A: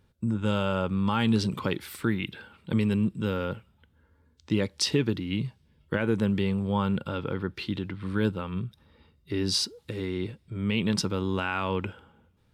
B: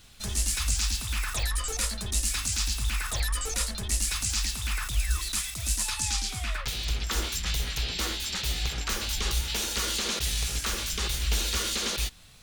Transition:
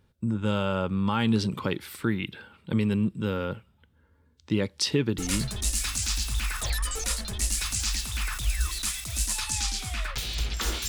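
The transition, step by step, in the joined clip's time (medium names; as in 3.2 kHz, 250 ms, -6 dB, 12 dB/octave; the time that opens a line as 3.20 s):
A
5.43 s: go over to B from 1.93 s, crossfade 0.50 s logarithmic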